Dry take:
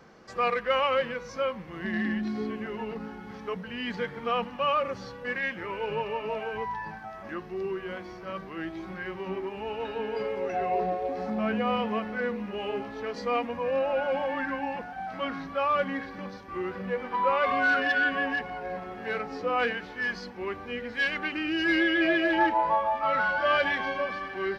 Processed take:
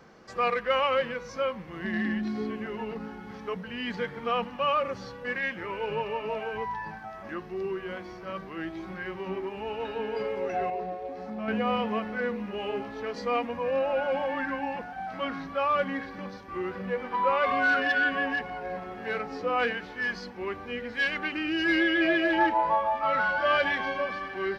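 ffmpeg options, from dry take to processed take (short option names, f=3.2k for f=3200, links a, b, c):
-filter_complex "[0:a]asplit=3[a][b][c];[a]atrim=end=10.702[d];[b]atrim=start=10.698:end=11.482,asetpts=PTS-STARTPTS,volume=-6dB[e];[c]atrim=start=11.478[f];[d][e]acrossfade=d=0.004:c1=hsin:c2=hsin[g];[g][f]acrossfade=d=0.004:c1=hsin:c2=hsin"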